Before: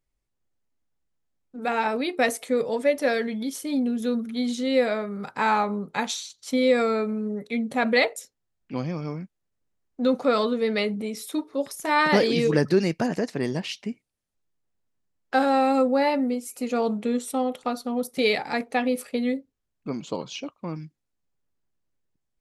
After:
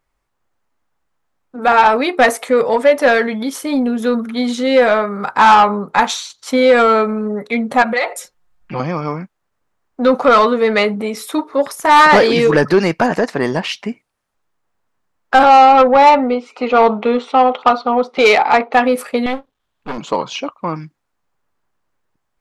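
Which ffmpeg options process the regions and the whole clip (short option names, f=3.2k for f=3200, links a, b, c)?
-filter_complex "[0:a]asettb=1/sr,asplit=3[a][b][c];[a]atrim=end=7.824[d];[b]atrim=start=7.82:end=8.8,asetpts=PTS-STARTPTS,afade=t=in:d=0.004:c=qsin,afade=t=out:st=0.976:d=0.004:c=qsin,asubboost=boost=11.5:cutoff=130,acompressor=threshold=-29dB:ratio=6:attack=3.2:release=140:knee=1:detection=peak,aecho=1:1:5.6:0.86,atrim=end_sample=43218[e];[c]atrim=start=8.796[f];[d][e]acrossfade=d=0.004:c1=hsin:c2=qsin[g];[g][f]acrossfade=d=0.004:c1=qsin:c2=hsin,asettb=1/sr,asplit=3[h][i][j];[h]atrim=end=15.434[k];[i]atrim=start=15.43:end=18.74,asetpts=PTS-STARTPTS,afade=t=in:d=0.004:c=qsin,afade=t=out:st=3.306:d=0.004:c=qsin,highpass=270,equalizer=f=280:t=q:w=4:g=-4,equalizer=f=550:t=q:w=4:g=-4,equalizer=f=1.7k:t=q:w=4:g=-9,lowpass=f=3.9k:w=0.5412,lowpass=f=3.9k:w=1.3066,acontrast=21[l];[j]atrim=start=18.736[m];[k][l]acrossfade=d=0.004:c1=hsin:c2=qsin[n];[n][m]acrossfade=d=0.004:c1=qsin:c2=hsin,asettb=1/sr,asplit=3[o][p][q];[o]atrim=end=19.264[r];[p]atrim=start=19.26:end=19.98,asetpts=PTS-STARTPTS,afade=t=in:d=0.004:c=qsin,afade=t=out:st=0.716:d=0.004:c=qsin,aeval=exprs='max(val(0),0)':c=same,equalizer=f=3.4k:w=2.5:g=10[s];[q]atrim=start=19.976[t];[r][s]acrossfade=d=0.004:c1=hsin:c2=qsin[u];[u][t]acrossfade=d=0.004:c1=qsin:c2=hsin,equalizer=f=1.1k:w=0.64:g=13.5,acontrast=81,volume=-1dB"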